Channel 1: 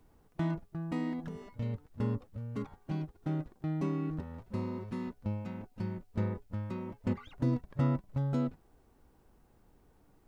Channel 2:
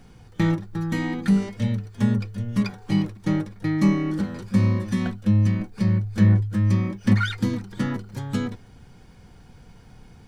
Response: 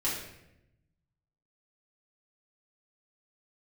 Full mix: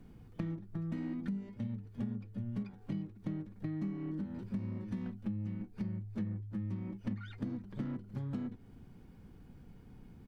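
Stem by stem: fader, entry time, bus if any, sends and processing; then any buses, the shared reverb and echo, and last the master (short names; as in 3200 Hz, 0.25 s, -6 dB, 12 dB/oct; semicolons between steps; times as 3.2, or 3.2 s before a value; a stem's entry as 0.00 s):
+0.5 dB, 0.00 s, no send, tube stage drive 37 dB, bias 0.65
-7.5 dB, 1.6 ms, no send, EQ curve 120 Hz 0 dB, 270 Hz +6 dB, 690 Hz -8 dB, 2700 Hz -6 dB, 6700 Hz -16 dB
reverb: off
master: compressor 6:1, threshold -36 dBFS, peak gain reduction 18 dB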